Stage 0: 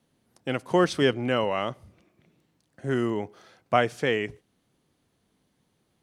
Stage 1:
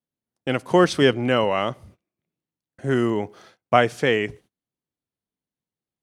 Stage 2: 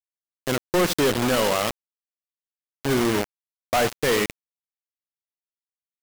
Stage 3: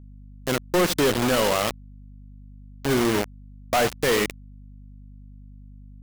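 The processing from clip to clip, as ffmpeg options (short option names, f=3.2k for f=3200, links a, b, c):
-af "agate=range=-27dB:threshold=-53dB:ratio=16:detection=peak,volume=5dB"
-af "asoftclip=type=hard:threshold=-16dB,aecho=1:1:71|142|213:0.299|0.0896|0.0269,acrusher=bits=3:mix=0:aa=0.000001"
-af "aeval=exprs='val(0)+0.00708*(sin(2*PI*50*n/s)+sin(2*PI*2*50*n/s)/2+sin(2*PI*3*50*n/s)/3+sin(2*PI*4*50*n/s)/4+sin(2*PI*5*50*n/s)/5)':c=same"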